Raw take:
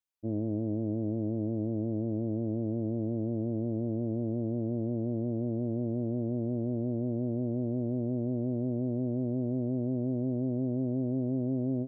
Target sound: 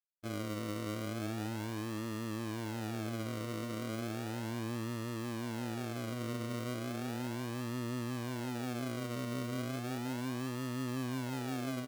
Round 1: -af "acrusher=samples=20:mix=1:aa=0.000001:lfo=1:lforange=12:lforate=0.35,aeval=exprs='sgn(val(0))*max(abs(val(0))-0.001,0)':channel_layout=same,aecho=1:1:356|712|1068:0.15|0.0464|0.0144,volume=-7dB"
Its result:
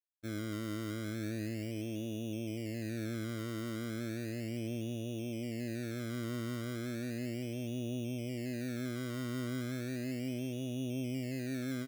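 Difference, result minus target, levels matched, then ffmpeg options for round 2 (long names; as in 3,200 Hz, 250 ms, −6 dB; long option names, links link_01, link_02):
sample-and-hold swept by an LFO: distortion −8 dB
-af "acrusher=samples=41:mix=1:aa=0.000001:lfo=1:lforange=24.6:lforate=0.35,aeval=exprs='sgn(val(0))*max(abs(val(0))-0.001,0)':channel_layout=same,aecho=1:1:356|712|1068:0.15|0.0464|0.0144,volume=-7dB"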